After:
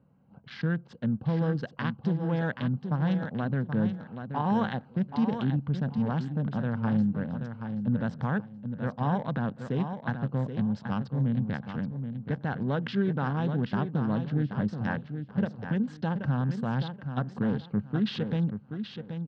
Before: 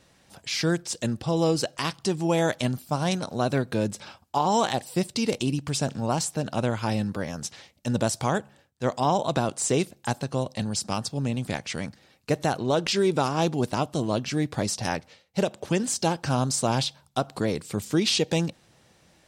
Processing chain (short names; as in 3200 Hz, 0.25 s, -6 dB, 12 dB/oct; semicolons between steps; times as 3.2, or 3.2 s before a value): Wiener smoothing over 25 samples; low shelf 200 Hz +12 dB; limiter -12 dBFS, peak gain reduction 6 dB; speaker cabinet 140–3200 Hz, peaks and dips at 140 Hz +3 dB, 210 Hz +5 dB, 350 Hz -9 dB, 640 Hz -6 dB, 1600 Hz +10 dB, 2400 Hz -8 dB; on a send: feedback echo 0.778 s, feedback 23%, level -8 dB; on the sum: gain -5.5 dB